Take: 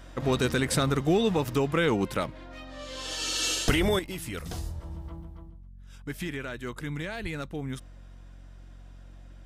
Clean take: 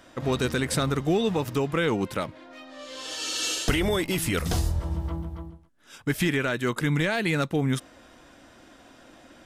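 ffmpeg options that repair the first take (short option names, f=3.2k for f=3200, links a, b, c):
-filter_complex "[0:a]bandreject=f=45.7:t=h:w=4,bandreject=f=91.4:t=h:w=4,bandreject=f=137.1:t=h:w=4,bandreject=f=182.8:t=h:w=4,bandreject=f=228.5:t=h:w=4,asplit=3[a][b][c];[a]afade=t=out:st=7.22:d=0.02[d];[b]highpass=f=140:w=0.5412,highpass=f=140:w=1.3066,afade=t=in:st=7.22:d=0.02,afade=t=out:st=7.34:d=0.02[e];[c]afade=t=in:st=7.34:d=0.02[f];[d][e][f]amix=inputs=3:normalize=0,asetnsamples=n=441:p=0,asendcmd='3.99 volume volume 10dB',volume=0dB"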